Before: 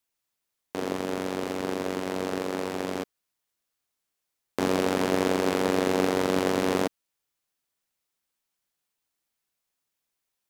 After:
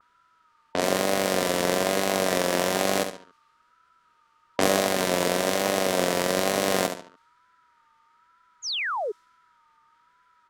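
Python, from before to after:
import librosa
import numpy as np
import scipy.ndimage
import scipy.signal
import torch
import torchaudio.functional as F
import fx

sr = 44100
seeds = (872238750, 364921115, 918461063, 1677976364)

y = fx.high_shelf(x, sr, hz=2900.0, db=8.5)
y = fx.notch(y, sr, hz=850.0, q=12.0)
y = fx.echo_feedback(y, sr, ms=70, feedback_pct=35, wet_db=-8)
y = fx.rider(y, sr, range_db=10, speed_s=0.5)
y = y + 10.0 ** (-57.0 / 20.0) * np.sin(2.0 * np.pi * 950.0 * np.arange(len(y)) / sr)
y = fx.vibrato(y, sr, rate_hz=1.1, depth_cents=76.0)
y = fx.formant_shift(y, sr, semitones=5)
y = fx.spec_paint(y, sr, seeds[0], shape='fall', start_s=8.62, length_s=0.5, low_hz=380.0, high_hz=7200.0, level_db=-30.0)
y = fx.env_lowpass(y, sr, base_hz=2300.0, full_db=-22.5)
y = F.gain(torch.from_numpy(y), 2.0).numpy()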